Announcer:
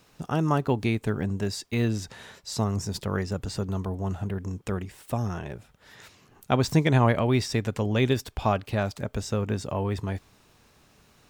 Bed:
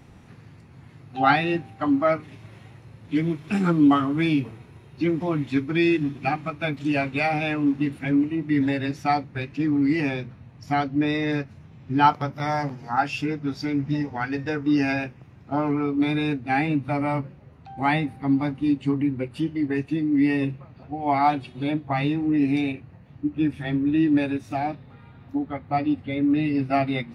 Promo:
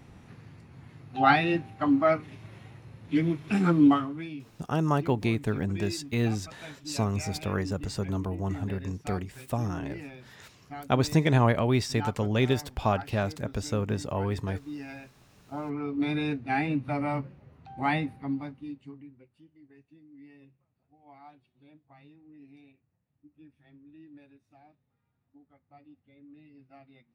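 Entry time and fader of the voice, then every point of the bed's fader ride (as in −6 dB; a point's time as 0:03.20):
4.40 s, −1.5 dB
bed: 0:03.87 −2 dB
0:04.30 −18 dB
0:15.08 −18 dB
0:16.12 −5 dB
0:18.06 −5 dB
0:19.38 −31.5 dB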